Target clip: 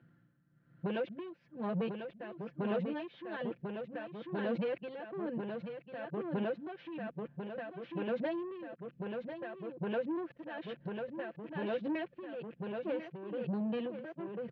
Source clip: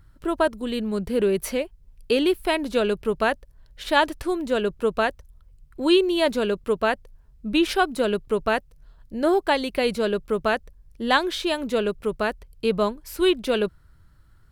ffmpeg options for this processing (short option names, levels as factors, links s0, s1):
-af "areverse,equalizer=f=970:w=1.9:g=-11.5,aecho=1:1:5.8:0.72,dynaudnorm=f=440:g=5:m=3.76,alimiter=limit=0.398:level=0:latency=1:release=242,acompressor=threshold=0.0562:ratio=6,aresample=16000,asoftclip=type=tanh:threshold=0.0422,aresample=44100,aeval=exprs='val(0)+0.00112*(sin(2*PI*60*n/s)+sin(2*PI*2*60*n/s)/2+sin(2*PI*3*60*n/s)/3+sin(2*PI*4*60*n/s)/4+sin(2*PI*5*60*n/s)/5)':c=same,highpass=f=140:w=0.5412,highpass=f=140:w=1.3066,equalizer=f=140:t=q:w=4:g=4,equalizer=f=210:t=q:w=4:g=-4,equalizer=f=370:t=q:w=4:g=-5,equalizer=f=1300:t=q:w=4:g=-6,equalizer=f=2100:t=q:w=4:g=-6,lowpass=f=2300:w=0.5412,lowpass=f=2300:w=1.3066,aecho=1:1:1045:0.562,tremolo=f=1.1:d=0.74"